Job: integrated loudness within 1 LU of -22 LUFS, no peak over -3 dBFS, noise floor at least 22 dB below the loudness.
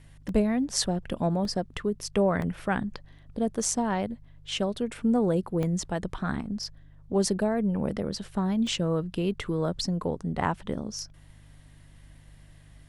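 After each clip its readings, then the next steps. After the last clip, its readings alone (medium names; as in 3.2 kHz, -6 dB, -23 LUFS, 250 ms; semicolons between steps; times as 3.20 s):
dropouts 6; longest dropout 1.9 ms; hum 50 Hz; highest harmonic 150 Hz; hum level -51 dBFS; loudness -29.0 LUFS; peak level -9.0 dBFS; loudness target -22.0 LUFS
-> interpolate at 0.29/1.45/2.42/3.64/5.63/8.67 s, 1.9 ms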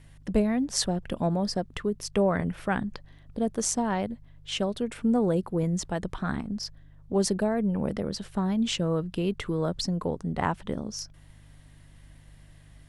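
dropouts 0; hum 50 Hz; highest harmonic 150 Hz; hum level -51 dBFS
-> de-hum 50 Hz, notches 3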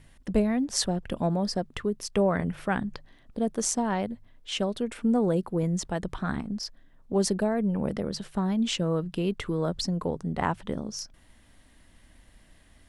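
hum not found; loudness -29.0 LUFS; peak level -9.0 dBFS; loudness target -22.0 LUFS
-> trim +7 dB; peak limiter -3 dBFS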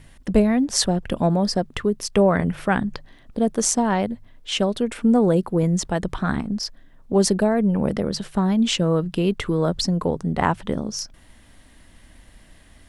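loudness -22.0 LUFS; peak level -3.0 dBFS; noise floor -51 dBFS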